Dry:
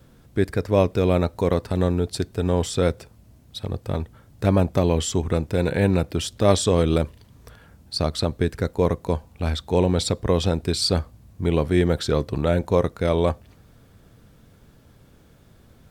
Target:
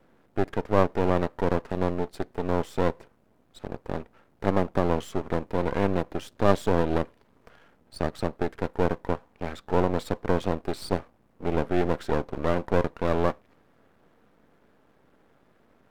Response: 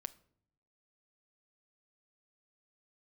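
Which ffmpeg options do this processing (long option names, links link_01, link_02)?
-filter_complex "[0:a]acrossover=split=210 2200:gain=0.0891 1 0.158[link_01][link_02][link_03];[link_01][link_02][link_03]amix=inputs=3:normalize=0,aeval=exprs='max(val(0),0)':channel_layout=same,volume=1.5dB"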